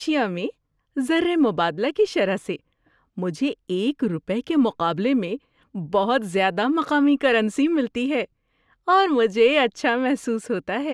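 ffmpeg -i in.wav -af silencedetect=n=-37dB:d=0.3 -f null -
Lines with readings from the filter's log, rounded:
silence_start: 0.50
silence_end: 0.97 | silence_duration: 0.46
silence_start: 2.56
silence_end: 3.18 | silence_duration: 0.61
silence_start: 5.37
silence_end: 5.75 | silence_duration: 0.38
silence_start: 8.25
silence_end: 8.87 | silence_duration: 0.63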